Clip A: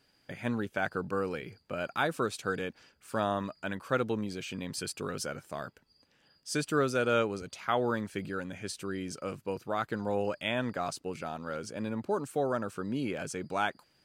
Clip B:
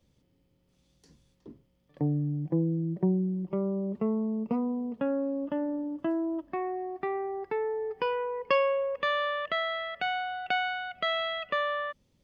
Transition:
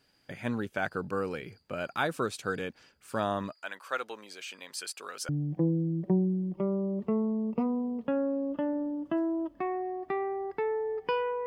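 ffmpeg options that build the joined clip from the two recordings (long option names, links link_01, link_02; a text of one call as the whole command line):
ffmpeg -i cue0.wav -i cue1.wav -filter_complex "[0:a]asettb=1/sr,asplit=3[link_01][link_02][link_03];[link_01]atrim=end=3.524[link_04];[link_02]atrim=start=3.52:end=5.29,asetpts=PTS-STARTPTS,afade=type=in:duration=0.004:curve=qsin,afade=type=out:start_time=1.766:duration=0.004:curve=qsin,highpass=730[link_05];[link_03]atrim=start=5.286[link_06];[link_04][link_05]acrossfade=duration=0.004:curve1=hsin:curve2=qsin[link_07];[link_07][link_06]acrossfade=duration=0.004:curve1=qsin:curve2=hsin,apad=whole_dur=11.46,atrim=end=11.46,atrim=end=5.292[link_08];[1:a]atrim=start=2.218:end=8.39[link_09];[link_08][link_09]acrossfade=duration=0.004:curve1=hsin:curve2=hsin" out.wav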